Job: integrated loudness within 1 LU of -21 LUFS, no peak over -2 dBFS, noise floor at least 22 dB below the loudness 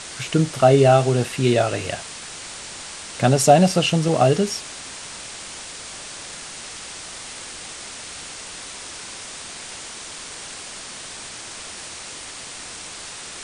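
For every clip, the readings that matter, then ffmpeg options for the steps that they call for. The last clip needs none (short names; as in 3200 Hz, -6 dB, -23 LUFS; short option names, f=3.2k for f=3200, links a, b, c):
noise floor -36 dBFS; noise floor target -46 dBFS; loudness -23.5 LUFS; peak -1.5 dBFS; loudness target -21.0 LUFS
-> -af "afftdn=nr=10:nf=-36"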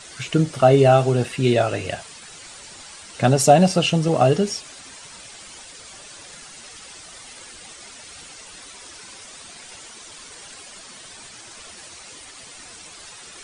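noise floor -42 dBFS; loudness -18.0 LUFS; peak -2.0 dBFS; loudness target -21.0 LUFS
-> -af "volume=-3dB"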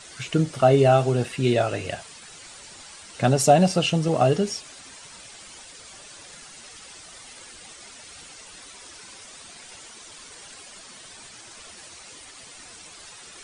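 loudness -21.0 LUFS; peak -5.0 dBFS; noise floor -45 dBFS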